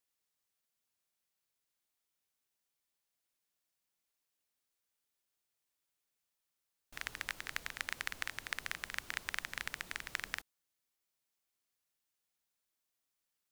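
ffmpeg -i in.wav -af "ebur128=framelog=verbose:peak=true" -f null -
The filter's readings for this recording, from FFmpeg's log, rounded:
Integrated loudness:
  I:         -41.3 LUFS
  Threshold: -51.5 LUFS
Loudness range:
  LRA:        10.0 LU
  Threshold: -63.6 LUFS
  LRA low:   -51.0 LUFS
  LRA high:  -41.0 LUFS
True peak:
  Peak:      -13.1 dBFS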